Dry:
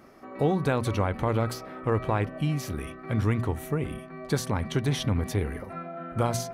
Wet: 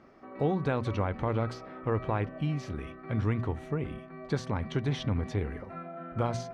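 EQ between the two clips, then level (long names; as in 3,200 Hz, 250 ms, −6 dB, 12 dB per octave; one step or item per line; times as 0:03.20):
high-frequency loss of the air 130 metres
−3.5 dB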